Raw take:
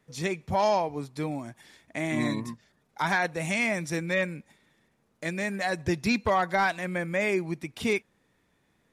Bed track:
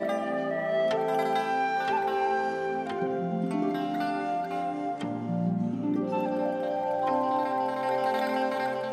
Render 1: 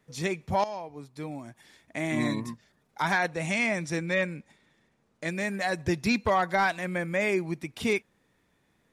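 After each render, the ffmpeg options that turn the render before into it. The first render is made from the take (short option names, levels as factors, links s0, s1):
-filter_complex "[0:a]asettb=1/sr,asplit=3[s0][s1][s2];[s0]atrim=end=3.284[s3];[s1]atrim=start=3.28:end=5.28,asetpts=PTS-STARTPTS,afade=t=in:d=0.004:c=qsin,afade=t=out:st=1.996:d=0.004:c=qsin,lowpass=8800[s4];[s2]atrim=start=5.276[s5];[s3][s4]acrossfade=d=0.004:c1=hsin:c2=qsin[s6];[s6][s5]acrossfade=d=0.004:c1=qsin:c2=hsin,asplit=2[s7][s8];[s7]atrim=end=0.64,asetpts=PTS-STARTPTS,afade=t=out:st=0.636:d=0.004:c=hsin:silence=0.188365[s9];[s8]atrim=start=0.64,asetpts=PTS-STARTPTS,afade=t=in:d=1.46:silence=0.188365[s10];[s9][s10]concat=n=2:v=0:a=1"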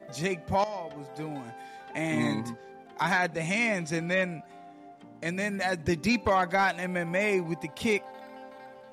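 -filter_complex "[1:a]volume=0.126[s0];[0:a][s0]amix=inputs=2:normalize=0"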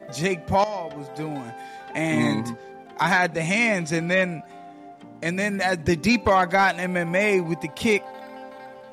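-af "volume=2"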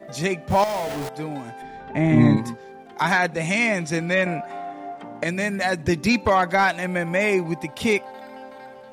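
-filter_complex "[0:a]asettb=1/sr,asplit=3[s0][s1][s2];[s0]atrim=end=0.504[s3];[s1]atrim=start=0.5:end=1.09,asetpts=PTS-STARTPTS,afade=t=in:d=0.004:c=qsin,afade=t=out:st=0.586:d=0.004:c=qsin,aeval=exprs='val(0)+0.5*0.0473*sgn(val(0))':c=same[s4];[s2]atrim=start=1.086[s5];[s3][s4]acrossfade=d=0.004:c1=hsin:c2=qsin[s6];[s6][s5]acrossfade=d=0.004:c1=qsin:c2=hsin,asettb=1/sr,asplit=3[s7][s8][s9];[s7]atrim=end=1.624[s10];[s8]atrim=start=1.62:end=2.37,asetpts=PTS-STARTPTS,afade=t=in:d=0.004:c=qsin,afade=t=out:st=0.746:d=0.004:c=qsin,aemphasis=mode=reproduction:type=riaa[s11];[s9]atrim=start=2.366[s12];[s10][s11]acrossfade=d=0.004:c1=hsin:c2=qsin[s13];[s13][s12]acrossfade=d=0.004:c1=qsin:c2=hsin,asettb=1/sr,asplit=3[s14][s15][s16];[s14]atrim=end=4.264[s17];[s15]atrim=start=4.26:end=5.24,asetpts=PTS-STARTPTS,afade=t=in:d=0.004:c=qsin,afade=t=out:st=0.976:d=0.004:c=qsin,equalizer=f=1000:w=0.39:g=11.5[s18];[s16]atrim=start=5.236[s19];[s17][s18]acrossfade=d=0.004:c1=hsin:c2=qsin[s20];[s20][s19]acrossfade=d=0.004:c1=qsin:c2=hsin"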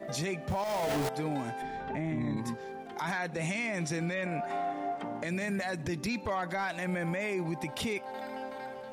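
-af "acompressor=threshold=0.0501:ratio=3,alimiter=level_in=1.12:limit=0.0631:level=0:latency=1:release=21,volume=0.891"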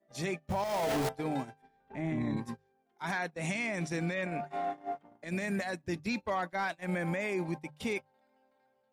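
-af "agate=range=0.0282:threshold=0.0224:ratio=16:detection=peak,bandreject=f=50:t=h:w=6,bandreject=f=100:t=h:w=6,bandreject=f=150:t=h:w=6"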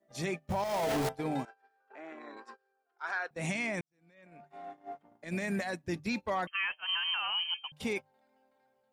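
-filter_complex "[0:a]asettb=1/sr,asplit=3[s0][s1][s2];[s0]atrim=end=1.454[s3];[s1]atrim=start=1.45:end=3.31,asetpts=PTS-STARTPTS,afade=t=in:d=0.004:c=qsin,afade=t=out:st=1.856:d=0.004:c=qsin,highpass=f=470:w=0.5412,highpass=f=470:w=1.3066,equalizer=f=610:t=q:w=4:g=-5,equalizer=f=880:t=q:w=4:g=-6,equalizer=f=1400:t=q:w=4:g=8,equalizer=f=2100:t=q:w=4:g=-9,equalizer=f=3500:t=q:w=4:g=-10,equalizer=f=6100:t=q:w=4:g=-9,lowpass=f=6200:w=0.5412,lowpass=f=6200:w=1.3066[s4];[s2]atrim=start=3.306[s5];[s3][s4]acrossfade=d=0.004:c1=hsin:c2=qsin[s6];[s6][s5]acrossfade=d=0.004:c1=qsin:c2=hsin,asettb=1/sr,asplit=3[s7][s8][s9];[s7]atrim=end=6.474[s10];[s8]atrim=start=6.47:end=7.72,asetpts=PTS-STARTPTS,afade=t=in:d=0.004:c=qsin,afade=t=out:st=1.246:d=0.004:c=qsin,lowpass=f=2800:t=q:w=0.5098,lowpass=f=2800:t=q:w=0.6013,lowpass=f=2800:t=q:w=0.9,lowpass=f=2800:t=q:w=2.563,afreqshift=-3300[s11];[s9]atrim=start=7.716[s12];[s10][s11]acrossfade=d=0.004:c1=hsin:c2=qsin[s13];[s13][s12]acrossfade=d=0.004:c1=qsin:c2=hsin,asplit=2[s14][s15];[s14]atrim=end=3.81,asetpts=PTS-STARTPTS,afade=t=out:st=3.806:d=0.004:c=hsin[s16];[s15]atrim=start=3.81,asetpts=PTS-STARTPTS,afade=t=in:d=1.59:c=qua[s17];[s16][s17]concat=n=2:v=0:a=1"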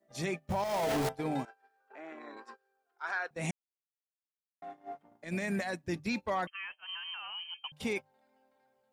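-filter_complex "[0:a]asplit=5[s0][s1][s2][s3][s4];[s0]atrim=end=3.51,asetpts=PTS-STARTPTS,afade=t=out:st=3.506:d=0.004:c=hsin[s5];[s1]atrim=start=3.51:end=4.62,asetpts=PTS-STARTPTS,volume=0[s6];[s2]atrim=start=4.62:end=6.502,asetpts=PTS-STARTPTS,afade=t=in:d=0.004:c=hsin[s7];[s3]atrim=start=6.498:end=7.642,asetpts=PTS-STARTPTS,volume=0.355[s8];[s4]atrim=start=7.638[s9];[s5][s6][s7]concat=n=3:v=0:a=1[s10];[s10][s8]acrossfade=d=0.004:c1=hsin:c2=hsin[s11];[s11][s9]acrossfade=d=0.004:c1=hsin:c2=hsin"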